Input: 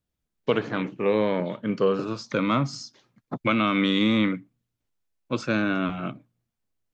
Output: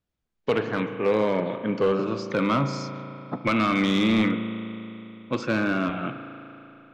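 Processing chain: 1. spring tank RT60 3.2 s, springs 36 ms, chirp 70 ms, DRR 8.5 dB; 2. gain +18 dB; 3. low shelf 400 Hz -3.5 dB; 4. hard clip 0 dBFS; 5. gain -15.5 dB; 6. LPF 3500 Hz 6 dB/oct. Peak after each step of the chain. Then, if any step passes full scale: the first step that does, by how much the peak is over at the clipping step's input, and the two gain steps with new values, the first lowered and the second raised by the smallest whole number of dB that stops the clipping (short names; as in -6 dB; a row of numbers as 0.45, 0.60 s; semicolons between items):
-8.0, +10.0, +9.5, 0.0, -15.5, -15.5 dBFS; step 2, 9.5 dB; step 2 +8 dB, step 5 -5.5 dB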